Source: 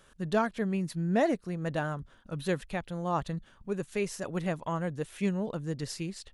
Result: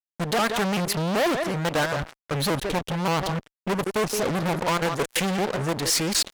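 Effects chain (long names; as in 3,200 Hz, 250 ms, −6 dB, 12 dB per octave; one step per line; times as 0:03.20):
output level in coarse steps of 16 dB
downward expander −54 dBFS
downward compressor 2.5 to 1, threshold −43 dBFS, peak gain reduction 9.5 dB
0:02.34–0:04.66: octave-band graphic EQ 125/250/2,000/8,000 Hz +4/+5/−11/−10 dB
far-end echo of a speakerphone 170 ms, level −14 dB
fuzz pedal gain 54 dB, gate −60 dBFS
low-shelf EQ 240 Hz −10.5 dB
pitch modulation by a square or saw wave saw up 5.2 Hz, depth 160 cents
level −5 dB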